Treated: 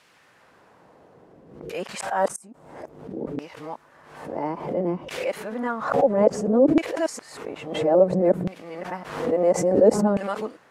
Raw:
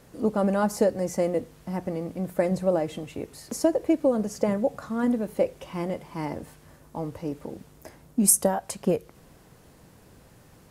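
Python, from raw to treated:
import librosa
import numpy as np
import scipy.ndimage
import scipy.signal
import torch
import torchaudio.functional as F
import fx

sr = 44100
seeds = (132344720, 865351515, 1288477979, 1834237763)

y = np.flip(x).copy()
y = fx.dynamic_eq(y, sr, hz=8100.0, q=2.1, threshold_db=-53.0, ratio=4.0, max_db=8)
y = fx.gate_flip(y, sr, shuts_db=-8.0, range_db=-29)
y = fx.filter_lfo_bandpass(y, sr, shape='saw_down', hz=0.59, low_hz=270.0, high_hz=2700.0, q=0.99)
y = fx.pre_swell(y, sr, db_per_s=71.0)
y = y * 10.0 ** (7.0 / 20.0)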